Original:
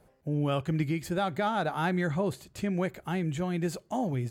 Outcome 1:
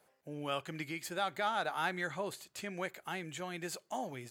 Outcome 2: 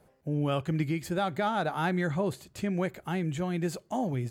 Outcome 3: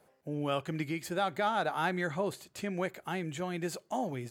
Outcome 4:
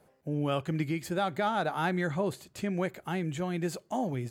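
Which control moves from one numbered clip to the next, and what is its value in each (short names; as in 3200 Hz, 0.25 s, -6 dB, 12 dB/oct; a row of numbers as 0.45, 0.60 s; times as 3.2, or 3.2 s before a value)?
HPF, cutoff: 1200, 51, 410, 160 Hz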